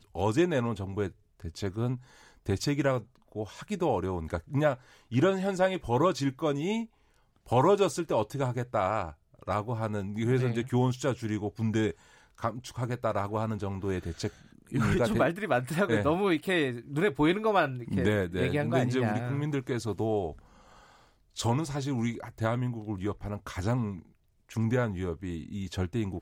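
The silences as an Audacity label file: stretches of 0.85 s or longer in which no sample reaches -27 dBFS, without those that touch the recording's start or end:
20.280000	21.390000	silence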